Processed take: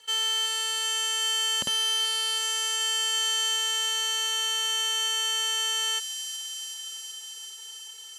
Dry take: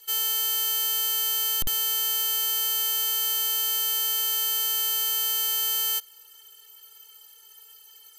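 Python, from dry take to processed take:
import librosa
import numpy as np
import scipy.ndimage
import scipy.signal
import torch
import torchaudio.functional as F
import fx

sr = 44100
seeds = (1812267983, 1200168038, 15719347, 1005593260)

y = fx.cabinet(x, sr, low_hz=150.0, low_slope=12, high_hz=8800.0, hz=(220.0, 560.0, 1000.0, 1700.0, 2900.0, 5100.0), db=(7, 10, 9, 5, 7, -4))
y = fx.dmg_crackle(y, sr, seeds[0], per_s=38.0, level_db=-50.0)
y = fx.echo_wet_highpass(y, sr, ms=378, feedback_pct=79, hz=3600.0, wet_db=-4)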